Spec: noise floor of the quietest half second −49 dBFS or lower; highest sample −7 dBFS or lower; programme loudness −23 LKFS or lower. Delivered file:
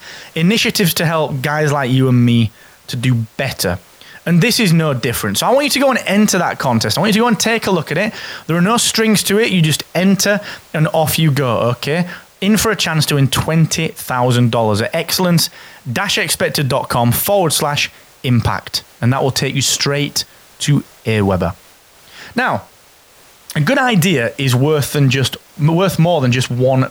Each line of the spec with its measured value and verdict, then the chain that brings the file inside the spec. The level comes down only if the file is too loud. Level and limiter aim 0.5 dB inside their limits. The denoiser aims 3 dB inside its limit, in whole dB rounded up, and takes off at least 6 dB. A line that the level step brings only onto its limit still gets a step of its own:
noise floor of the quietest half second −46 dBFS: out of spec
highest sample −4.5 dBFS: out of spec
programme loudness −15.0 LKFS: out of spec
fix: level −8.5 dB

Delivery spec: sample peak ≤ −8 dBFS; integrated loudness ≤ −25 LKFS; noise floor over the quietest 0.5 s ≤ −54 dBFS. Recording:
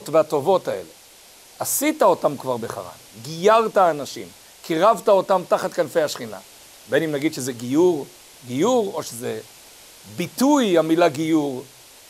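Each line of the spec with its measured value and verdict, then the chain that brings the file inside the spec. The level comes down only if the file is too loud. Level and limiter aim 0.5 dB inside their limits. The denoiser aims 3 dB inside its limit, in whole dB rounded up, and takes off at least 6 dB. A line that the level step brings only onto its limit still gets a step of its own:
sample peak −5.0 dBFS: out of spec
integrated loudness −20.5 LKFS: out of spec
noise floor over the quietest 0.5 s −48 dBFS: out of spec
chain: broadband denoise 6 dB, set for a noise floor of −48 dBFS
level −5 dB

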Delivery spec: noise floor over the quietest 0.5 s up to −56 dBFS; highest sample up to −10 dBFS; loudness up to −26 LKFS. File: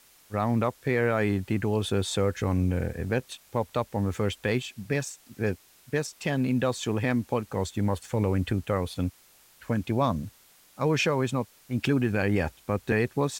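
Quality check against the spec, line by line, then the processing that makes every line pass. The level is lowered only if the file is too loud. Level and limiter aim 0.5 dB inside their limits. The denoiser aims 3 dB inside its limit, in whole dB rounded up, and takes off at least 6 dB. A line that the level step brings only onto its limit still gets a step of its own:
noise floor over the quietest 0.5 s −58 dBFS: in spec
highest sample −12.0 dBFS: in spec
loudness −28.0 LKFS: in spec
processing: no processing needed

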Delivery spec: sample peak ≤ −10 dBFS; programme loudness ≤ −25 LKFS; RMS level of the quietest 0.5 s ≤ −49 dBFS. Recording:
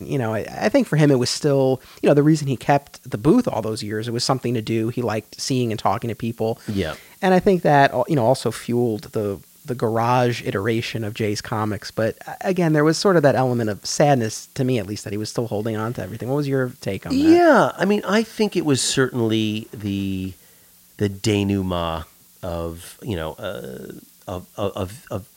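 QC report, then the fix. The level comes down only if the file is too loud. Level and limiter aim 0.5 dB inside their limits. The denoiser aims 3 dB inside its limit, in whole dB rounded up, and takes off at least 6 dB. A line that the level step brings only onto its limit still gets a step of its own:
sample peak −3.5 dBFS: out of spec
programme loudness −21.0 LKFS: out of spec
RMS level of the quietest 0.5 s −51 dBFS: in spec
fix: level −4.5 dB
brickwall limiter −10.5 dBFS

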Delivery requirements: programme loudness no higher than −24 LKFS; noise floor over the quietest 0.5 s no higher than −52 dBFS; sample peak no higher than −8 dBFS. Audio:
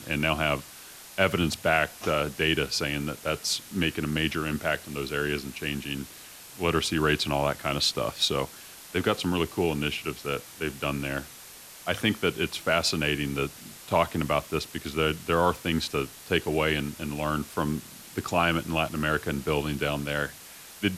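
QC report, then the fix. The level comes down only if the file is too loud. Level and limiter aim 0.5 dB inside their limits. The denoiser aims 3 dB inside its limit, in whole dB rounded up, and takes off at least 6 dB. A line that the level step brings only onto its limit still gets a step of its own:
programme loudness −27.5 LKFS: in spec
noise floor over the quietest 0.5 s −47 dBFS: out of spec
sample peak −7.5 dBFS: out of spec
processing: broadband denoise 8 dB, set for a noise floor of −47 dBFS
brickwall limiter −8.5 dBFS

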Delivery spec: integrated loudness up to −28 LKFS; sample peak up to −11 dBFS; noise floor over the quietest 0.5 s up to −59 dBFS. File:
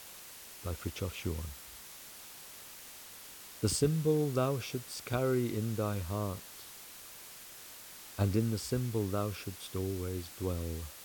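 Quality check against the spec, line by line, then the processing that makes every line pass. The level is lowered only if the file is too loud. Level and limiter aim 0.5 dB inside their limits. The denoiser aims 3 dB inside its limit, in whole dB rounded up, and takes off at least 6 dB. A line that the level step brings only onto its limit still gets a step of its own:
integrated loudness −34.5 LKFS: in spec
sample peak −15.5 dBFS: in spec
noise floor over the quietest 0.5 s −50 dBFS: out of spec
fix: broadband denoise 12 dB, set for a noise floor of −50 dBFS

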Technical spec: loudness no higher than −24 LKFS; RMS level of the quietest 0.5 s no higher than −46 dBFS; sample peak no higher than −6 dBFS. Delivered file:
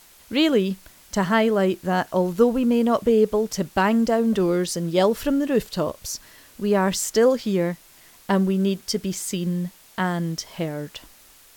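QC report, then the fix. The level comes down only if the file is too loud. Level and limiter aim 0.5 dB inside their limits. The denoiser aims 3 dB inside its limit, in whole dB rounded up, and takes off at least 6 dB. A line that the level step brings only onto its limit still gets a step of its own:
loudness −22.5 LKFS: out of spec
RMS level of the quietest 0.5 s −51 dBFS: in spec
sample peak −5.5 dBFS: out of spec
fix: level −2 dB

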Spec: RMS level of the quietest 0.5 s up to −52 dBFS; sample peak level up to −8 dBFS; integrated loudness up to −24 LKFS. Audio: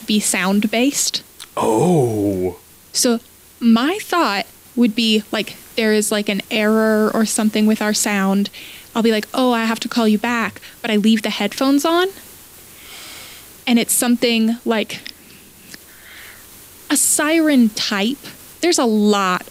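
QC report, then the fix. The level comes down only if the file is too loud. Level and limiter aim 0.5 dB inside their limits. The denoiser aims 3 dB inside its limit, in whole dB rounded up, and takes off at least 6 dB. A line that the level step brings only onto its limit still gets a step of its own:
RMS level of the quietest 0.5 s −43 dBFS: out of spec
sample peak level −5.0 dBFS: out of spec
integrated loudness −17.0 LKFS: out of spec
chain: broadband denoise 6 dB, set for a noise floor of −43 dBFS
level −7.5 dB

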